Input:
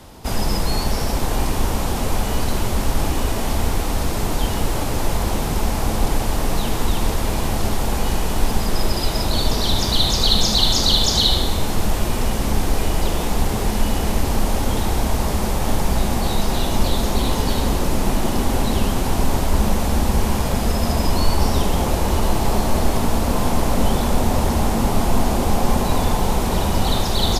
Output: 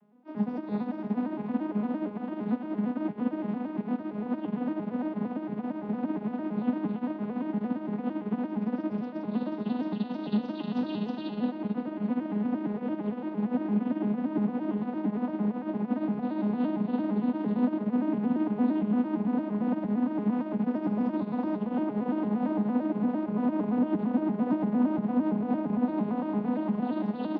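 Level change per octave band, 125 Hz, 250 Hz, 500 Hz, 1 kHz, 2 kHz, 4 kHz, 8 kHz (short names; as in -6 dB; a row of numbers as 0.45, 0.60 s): -16.5 dB, -1.5 dB, -10.0 dB, -13.5 dB, -17.0 dB, under -30 dB, under -40 dB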